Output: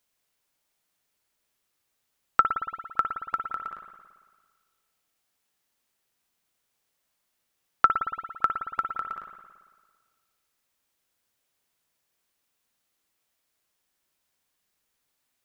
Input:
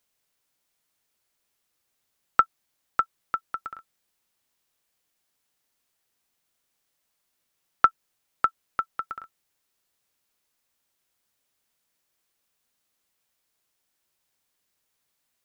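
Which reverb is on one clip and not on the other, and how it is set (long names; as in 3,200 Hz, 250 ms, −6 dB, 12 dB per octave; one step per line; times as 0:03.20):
spring reverb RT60 1.6 s, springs 56 ms, chirp 70 ms, DRR 4.5 dB
level −1 dB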